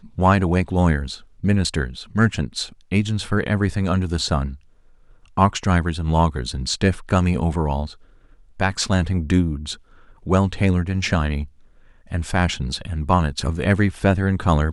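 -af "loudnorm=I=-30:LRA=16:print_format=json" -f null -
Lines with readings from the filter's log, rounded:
"input_i" : "-21.2",
"input_tp" : "-4.3",
"input_lra" : "1.8",
"input_thresh" : "-31.7",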